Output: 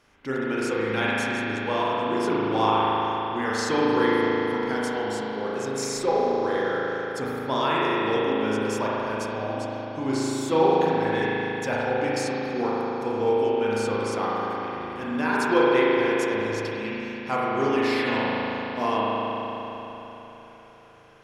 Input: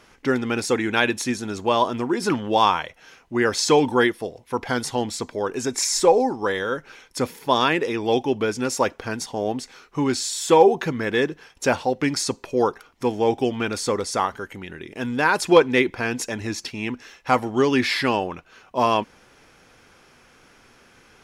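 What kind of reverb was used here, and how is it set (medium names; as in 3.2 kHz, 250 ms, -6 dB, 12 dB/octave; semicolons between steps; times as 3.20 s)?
spring tank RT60 3.9 s, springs 37 ms, chirp 65 ms, DRR -7 dB; trim -10 dB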